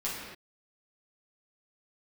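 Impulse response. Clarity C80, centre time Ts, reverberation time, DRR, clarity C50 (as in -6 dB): 2.5 dB, 78 ms, no single decay rate, -8.5 dB, 0.0 dB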